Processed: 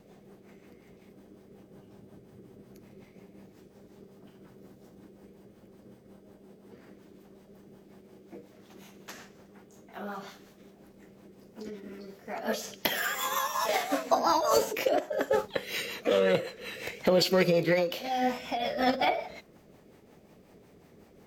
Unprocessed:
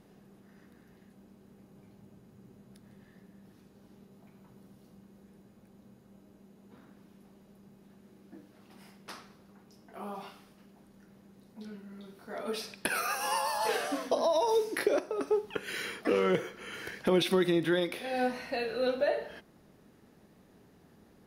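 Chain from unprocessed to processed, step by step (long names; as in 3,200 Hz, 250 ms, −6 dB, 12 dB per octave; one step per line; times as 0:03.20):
rotating-speaker cabinet horn 5.5 Hz
formants moved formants +4 semitones
level +5 dB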